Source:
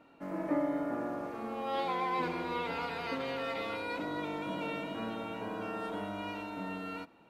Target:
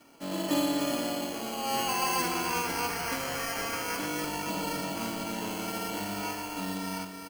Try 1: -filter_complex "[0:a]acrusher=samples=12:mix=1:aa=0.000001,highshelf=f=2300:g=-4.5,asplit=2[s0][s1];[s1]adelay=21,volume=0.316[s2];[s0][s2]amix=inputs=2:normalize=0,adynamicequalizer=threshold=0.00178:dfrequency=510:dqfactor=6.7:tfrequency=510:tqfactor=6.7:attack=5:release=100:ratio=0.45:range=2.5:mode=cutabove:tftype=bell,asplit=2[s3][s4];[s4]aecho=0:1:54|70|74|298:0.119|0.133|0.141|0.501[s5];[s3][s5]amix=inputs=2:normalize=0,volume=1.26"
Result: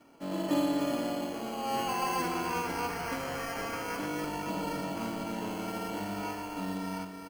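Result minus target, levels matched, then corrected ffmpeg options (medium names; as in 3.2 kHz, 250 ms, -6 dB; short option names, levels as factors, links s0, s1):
4 kHz band -4.5 dB
-filter_complex "[0:a]acrusher=samples=12:mix=1:aa=0.000001,highshelf=f=2300:g=5,asplit=2[s0][s1];[s1]adelay=21,volume=0.316[s2];[s0][s2]amix=inputs=2:normalize=0,adynamicequalizer=threshold=0.00178:dfrequency=510:dqfactor=6.7:tfrequency=510:tqfactor=6.7:attack=5:release=100:ratio=0.45:range=2.5:mode=cutabove:tftype=bell,asplit=2[s3][s4];[s4]aecho=0:1:54|70|74|298:0.119|0.133|0.141|0.501[s5];[s3][s5]amix=inputs=2:normalize=0,volume=1.26"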